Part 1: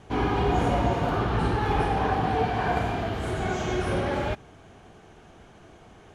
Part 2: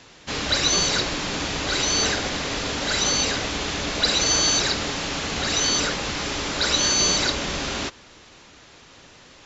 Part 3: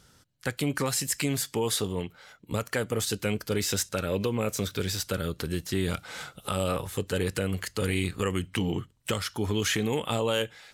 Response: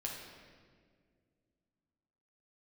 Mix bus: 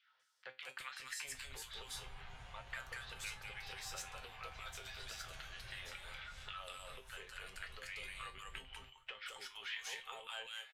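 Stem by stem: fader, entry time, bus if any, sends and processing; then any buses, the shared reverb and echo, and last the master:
−3.0 dB, 1.75 s, no bus, no send, echo send −5.5 dB, downward compressor 2 to 1, threshold −42 dBFS, peak gain reduction 12.5 dB
−16.5 dB, 1.00 s, bus A, no send, no echo send, spectral tilt −3.5 dB per octave
+1.0 dB, 0.00 s, bus A, no send, echo send −8.5 dB, high-shelf EQ 11,000 Hz −11 dB; auto-filter high-pass saw down 3.7 Hz 270–2,500 Hz
bus A: 0.0 dB, low-pass filter 3,300 Hz 24 dB per octave; downward compressor 5 to 1, threshold −29 dBFS, peak gain reduction 10.5 dB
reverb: not used
echo: single-tap delay 195 ms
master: guitar amp tone stack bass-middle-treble 10-0-10; tuned comb filter 130 Hz, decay 0.24 s, harmonics all, mix 80%

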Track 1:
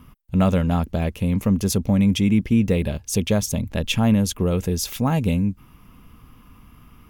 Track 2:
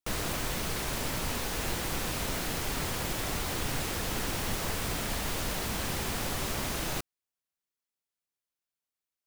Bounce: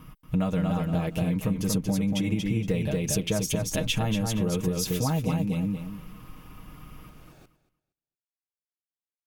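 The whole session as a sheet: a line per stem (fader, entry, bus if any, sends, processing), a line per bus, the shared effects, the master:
−0.5 dB, 0.00 s, no send, echo send −4 dB, comb filter 6.4 ms, depth 73%
−16.0 dB, 0.45 s, no send, echo send −23 dB, spectral tilt −2 dB per octave; notch comb filter 1,000 Hz; automatic ducking −10 dB, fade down 1.95 s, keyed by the first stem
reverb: not used
echo: repeating echo 233 ms, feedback 20%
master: downward compressor, threshold −23 dBFS, peak gain reduction 11.5 dB

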